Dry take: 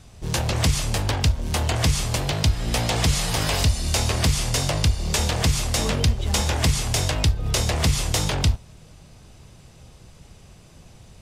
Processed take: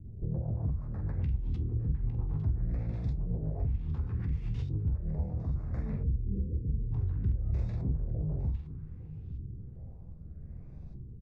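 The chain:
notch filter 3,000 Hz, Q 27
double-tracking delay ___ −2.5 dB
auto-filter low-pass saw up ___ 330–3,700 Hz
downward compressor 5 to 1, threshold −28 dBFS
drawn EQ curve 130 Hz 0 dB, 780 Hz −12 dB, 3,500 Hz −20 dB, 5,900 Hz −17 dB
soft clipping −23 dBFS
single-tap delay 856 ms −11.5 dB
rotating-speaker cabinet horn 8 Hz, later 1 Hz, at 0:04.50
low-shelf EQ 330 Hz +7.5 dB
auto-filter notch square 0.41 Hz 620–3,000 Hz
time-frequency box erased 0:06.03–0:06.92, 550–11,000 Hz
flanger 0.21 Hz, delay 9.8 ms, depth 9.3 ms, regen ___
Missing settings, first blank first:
46 ms, 0.64 Hz, −57%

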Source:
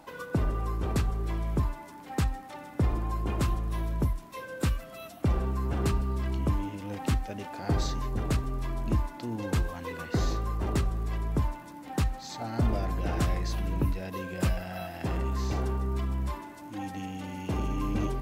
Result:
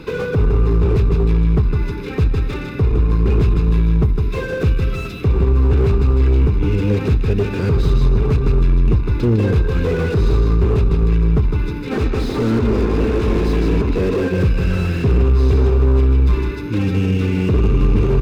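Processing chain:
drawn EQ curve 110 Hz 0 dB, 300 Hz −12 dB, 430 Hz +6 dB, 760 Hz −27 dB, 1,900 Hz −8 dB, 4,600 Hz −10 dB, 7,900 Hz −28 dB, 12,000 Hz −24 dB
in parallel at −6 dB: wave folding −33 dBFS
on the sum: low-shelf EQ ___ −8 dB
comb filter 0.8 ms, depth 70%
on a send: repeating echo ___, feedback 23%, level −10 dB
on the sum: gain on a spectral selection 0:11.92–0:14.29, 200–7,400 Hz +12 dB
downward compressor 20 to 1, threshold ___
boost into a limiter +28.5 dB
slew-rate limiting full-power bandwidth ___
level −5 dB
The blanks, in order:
120 Hz, 157 ms, −33 dBFS, 130 Hz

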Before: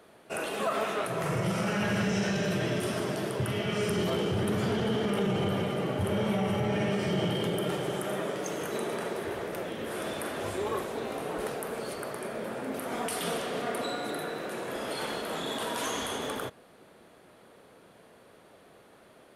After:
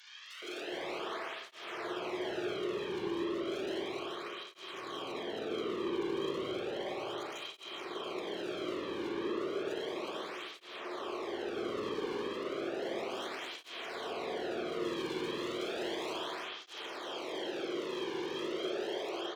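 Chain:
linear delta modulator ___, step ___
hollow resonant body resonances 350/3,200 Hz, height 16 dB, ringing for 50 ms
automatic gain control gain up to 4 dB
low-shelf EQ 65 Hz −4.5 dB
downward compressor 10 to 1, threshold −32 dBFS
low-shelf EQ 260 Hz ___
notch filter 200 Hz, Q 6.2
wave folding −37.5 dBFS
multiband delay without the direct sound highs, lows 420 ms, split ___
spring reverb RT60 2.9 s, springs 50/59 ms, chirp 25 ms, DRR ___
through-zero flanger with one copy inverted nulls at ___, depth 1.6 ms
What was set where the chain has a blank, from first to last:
32 kbit/s, −41.5 dBFS, −11.5 dB, 1,500 Hz, −6.5 dB, 0.33 Hz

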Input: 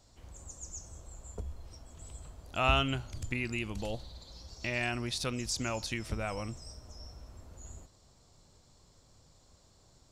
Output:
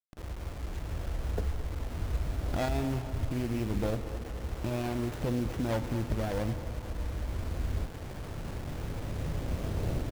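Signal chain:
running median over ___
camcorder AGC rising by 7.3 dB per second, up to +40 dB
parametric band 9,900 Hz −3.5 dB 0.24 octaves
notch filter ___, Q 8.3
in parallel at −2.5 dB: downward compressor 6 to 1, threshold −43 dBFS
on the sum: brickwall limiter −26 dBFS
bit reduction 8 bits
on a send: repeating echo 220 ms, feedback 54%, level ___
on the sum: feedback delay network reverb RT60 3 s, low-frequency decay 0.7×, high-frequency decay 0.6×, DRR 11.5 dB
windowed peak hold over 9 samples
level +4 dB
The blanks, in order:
41 samples, 7,100 Hz, −14 dB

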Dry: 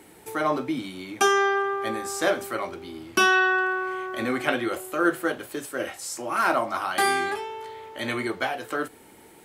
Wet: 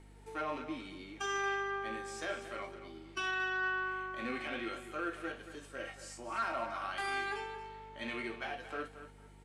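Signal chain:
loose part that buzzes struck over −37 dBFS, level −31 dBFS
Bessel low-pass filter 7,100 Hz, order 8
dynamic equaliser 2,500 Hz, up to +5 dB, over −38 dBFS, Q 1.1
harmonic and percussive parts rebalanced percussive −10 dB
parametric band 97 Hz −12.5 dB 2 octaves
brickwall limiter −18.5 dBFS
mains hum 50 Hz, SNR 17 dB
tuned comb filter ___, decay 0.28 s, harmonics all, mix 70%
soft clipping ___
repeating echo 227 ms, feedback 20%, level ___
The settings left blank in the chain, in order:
230 Hz, −25 dBFS, −12 dB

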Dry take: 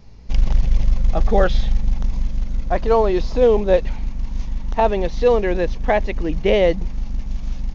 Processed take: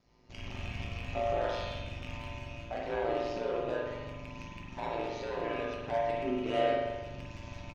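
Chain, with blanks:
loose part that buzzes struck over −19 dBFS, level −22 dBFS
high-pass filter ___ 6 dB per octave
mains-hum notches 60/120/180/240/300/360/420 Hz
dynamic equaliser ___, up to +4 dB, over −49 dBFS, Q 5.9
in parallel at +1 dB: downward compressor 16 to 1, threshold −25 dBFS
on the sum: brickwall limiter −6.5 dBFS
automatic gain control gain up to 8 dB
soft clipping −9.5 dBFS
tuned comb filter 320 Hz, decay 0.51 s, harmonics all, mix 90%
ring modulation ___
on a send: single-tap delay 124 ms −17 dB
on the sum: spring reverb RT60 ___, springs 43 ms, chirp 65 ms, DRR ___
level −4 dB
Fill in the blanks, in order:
170 Hz, 2,900 Hz, 58 Hz, 1.2 s, −3 dB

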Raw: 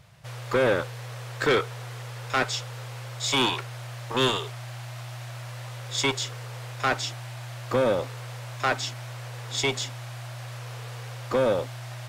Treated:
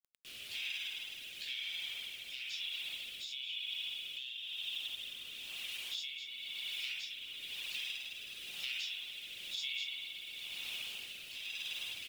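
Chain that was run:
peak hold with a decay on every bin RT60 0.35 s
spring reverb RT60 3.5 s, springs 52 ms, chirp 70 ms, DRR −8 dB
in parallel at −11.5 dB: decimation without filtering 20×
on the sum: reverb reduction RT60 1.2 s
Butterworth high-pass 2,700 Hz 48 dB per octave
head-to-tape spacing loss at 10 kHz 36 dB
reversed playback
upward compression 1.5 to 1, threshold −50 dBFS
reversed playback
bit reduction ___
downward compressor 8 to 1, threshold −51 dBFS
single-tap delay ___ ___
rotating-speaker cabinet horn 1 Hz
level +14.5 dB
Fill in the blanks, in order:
10 bits, 220 ms, −18 dB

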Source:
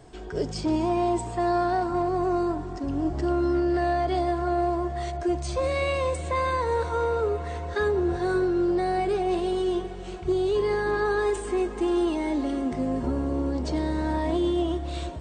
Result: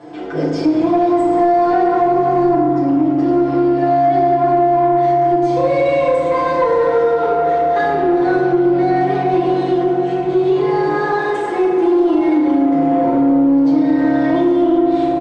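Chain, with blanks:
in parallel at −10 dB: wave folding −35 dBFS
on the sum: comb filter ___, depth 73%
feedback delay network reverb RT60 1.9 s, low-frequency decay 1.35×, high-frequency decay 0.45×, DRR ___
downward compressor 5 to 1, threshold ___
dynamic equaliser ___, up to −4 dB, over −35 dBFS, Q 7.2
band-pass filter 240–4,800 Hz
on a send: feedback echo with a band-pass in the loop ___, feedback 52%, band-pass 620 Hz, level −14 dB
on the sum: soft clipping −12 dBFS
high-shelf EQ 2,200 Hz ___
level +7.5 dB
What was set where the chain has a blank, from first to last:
5.9 ms, −5 dB, −15 dBFS, 420 Hz, 348 ms, −9 dB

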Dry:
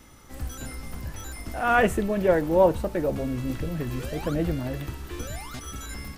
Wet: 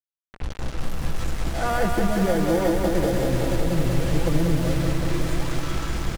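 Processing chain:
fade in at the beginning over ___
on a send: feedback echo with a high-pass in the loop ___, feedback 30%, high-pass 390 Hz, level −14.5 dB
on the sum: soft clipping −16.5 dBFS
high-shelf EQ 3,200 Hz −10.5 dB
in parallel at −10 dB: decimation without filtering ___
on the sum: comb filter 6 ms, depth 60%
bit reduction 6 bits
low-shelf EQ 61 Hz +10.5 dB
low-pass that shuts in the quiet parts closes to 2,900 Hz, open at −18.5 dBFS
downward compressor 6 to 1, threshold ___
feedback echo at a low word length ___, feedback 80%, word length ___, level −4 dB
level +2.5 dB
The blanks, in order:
0.94 s, 872 ms, 33×, −22 dBFS, 188 ms, 8 bits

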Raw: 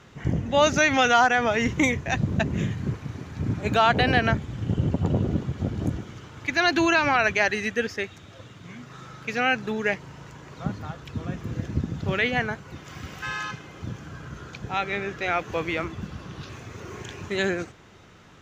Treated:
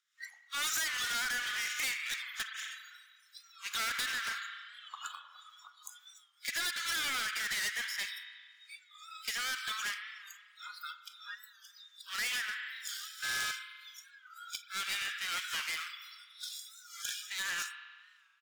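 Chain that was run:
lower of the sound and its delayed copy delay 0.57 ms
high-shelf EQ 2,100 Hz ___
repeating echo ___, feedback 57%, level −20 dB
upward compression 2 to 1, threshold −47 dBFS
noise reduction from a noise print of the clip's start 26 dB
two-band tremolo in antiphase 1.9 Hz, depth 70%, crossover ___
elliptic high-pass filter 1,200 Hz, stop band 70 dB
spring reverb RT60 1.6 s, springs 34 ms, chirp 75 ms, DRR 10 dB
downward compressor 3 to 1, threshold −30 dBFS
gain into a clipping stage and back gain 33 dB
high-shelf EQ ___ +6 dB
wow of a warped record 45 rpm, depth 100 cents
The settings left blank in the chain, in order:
+10.5 dB, 82 ms, 490 Hz, 5,000 Hz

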